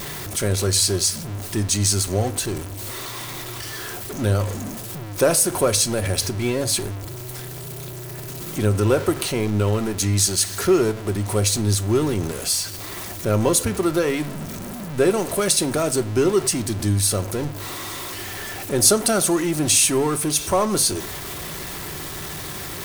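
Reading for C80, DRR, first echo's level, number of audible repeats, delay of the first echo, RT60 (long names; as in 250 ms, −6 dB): 24.0 dB, 8.0 dB, no echo audible, no echo audible, no echo audible, 0.50 s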